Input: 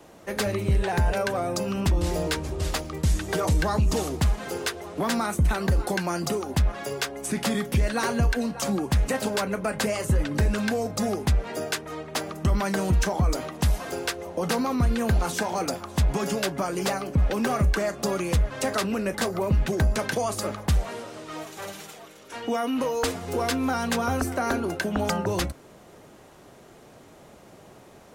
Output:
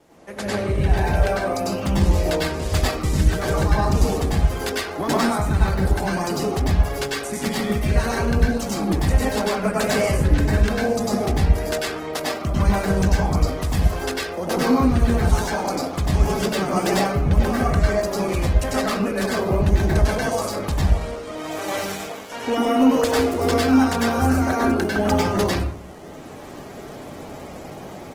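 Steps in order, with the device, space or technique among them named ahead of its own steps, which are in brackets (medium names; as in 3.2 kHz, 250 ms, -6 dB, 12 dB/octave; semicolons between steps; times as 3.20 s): speakerphone in a meeting room (reverberation RT60 0.60 s, pre-delay 93 ms, DRR -5.5 dB; speakerphone echo 90 ms, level -30 dB; level rider; trim -5 dB; Opus 16 kbps 48 kHz)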